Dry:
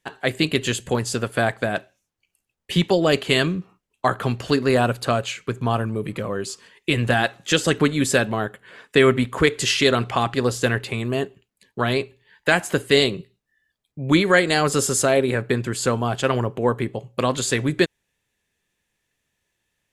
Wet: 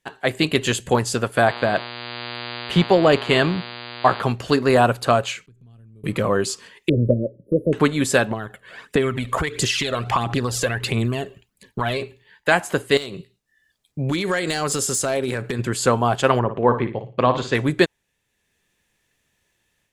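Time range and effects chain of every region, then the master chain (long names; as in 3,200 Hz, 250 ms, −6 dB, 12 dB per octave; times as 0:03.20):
0:01.46–0:04.21: low-pass filter 3,300 Hz 6 dB per octave + hum with harmonics 120 Hz, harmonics 40, −36 dBFS −1 dB per octave
0:05.46–0:06.04: guitar amp tone stack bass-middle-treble 10-0-1 + downward compressor 5 to 1, threshold −49 dBFS
0:06.89–0:07.73: linear-phase brick-wall band-stop 640–9,500 Hz + high-frequency loss of the air 200 metres
0:08.31–0:12.02: downward compressor, threshold −26 dBFS + phase shifter 1.5 Hz, delay 1.9 ms, feedback 53%
0:12.97–0:15.59: parametric band 7,300 Hz +5.5 dB 2.2 octaves + downward compressor 8 to 1, threshold −25 dBFS + hard clipping −21.5 dBFS
0:16.39–0:17.55: high-frequency loss of the air 210 metres + flutter between parallel walls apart 9.8 metres, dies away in 0.35 s
whole clip: dynamic equaliser 880 Hz, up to +6 dB, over −33 dBFS, Q 1.1; automatic gain control gain up to 7 dB; level −1 dB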